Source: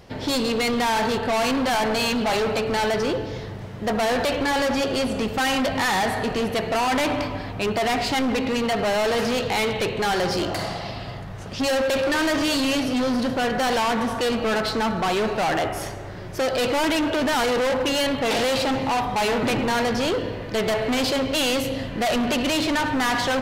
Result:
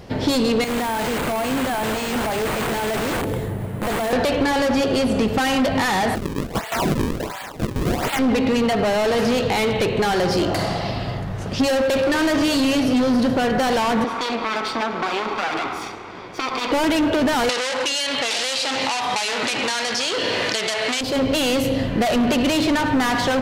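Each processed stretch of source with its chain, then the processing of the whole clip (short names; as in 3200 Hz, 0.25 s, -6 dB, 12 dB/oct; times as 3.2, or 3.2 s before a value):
0.64–4.13 wrapped overs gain 23 dB + air absorption 170 m + careless resampling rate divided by 4×, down none, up hold
6.15–8.19 HPF 870 Hz 24 dB/oct + decimation with a swept rate 36×, swing 160% 1.4 Hz
14.04–16.72 minimum comb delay 0.87 ms + three-band isolator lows -22 dB, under 280 Hz, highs -16 dB, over 5800 Hz
17.49–21.01 weighting filter ITU-R 468 + fast leveller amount 70%
whole clip: low shelf 160 Hz -6.5 dB; compressor, threshold -25 dBFS; low shelf 410 Hz +8.5 dB; gain +4.5 dB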